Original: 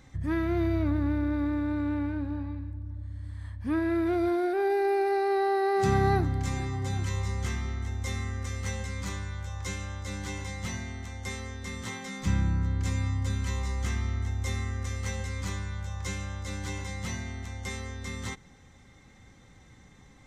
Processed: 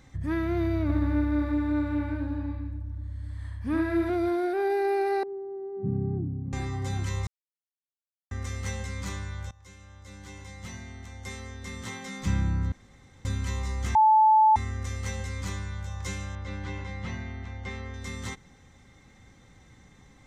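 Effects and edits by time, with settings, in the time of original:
0.82–4.1 echo 74 ms -3.5 dB
5.23–6.53 Butterworth band-pass 180 Hz, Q 0.93
7.27–8.31 mute
9.51–12.13 fade in, from -20.5 dB
12.72–13.25 room tone
13.95–14.56 bleep 870 Hz -15 dBFS
16.35–17.94 LPF 3100 Hz

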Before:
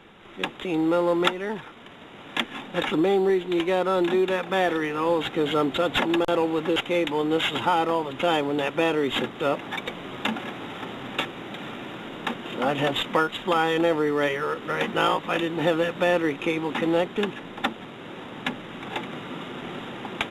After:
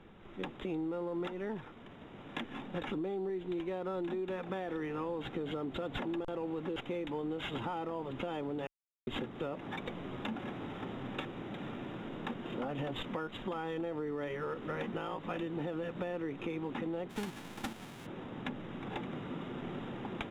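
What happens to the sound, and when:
8.67–9.07 mute
17.09–18.05 spectral whitening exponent 0.3
whole clip: tilt -2.5 dB/oct; limiter -14 dBFS; compressor, threshold -25 dBFS; gain -9 dB

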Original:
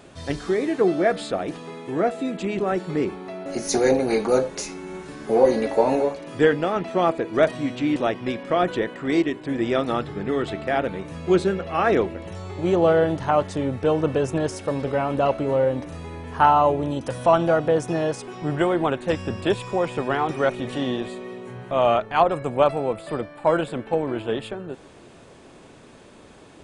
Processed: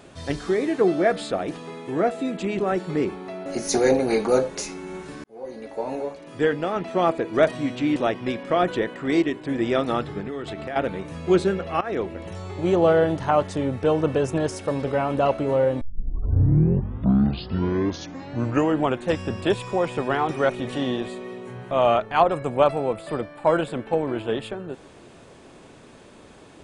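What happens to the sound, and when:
5.24–7.13 fade in
10.2–10.76 compressor 5:1, threshold -28 dBFS
11.81–12.21 fade in, from -17.5 dB
15.81 tape start 3.27 s

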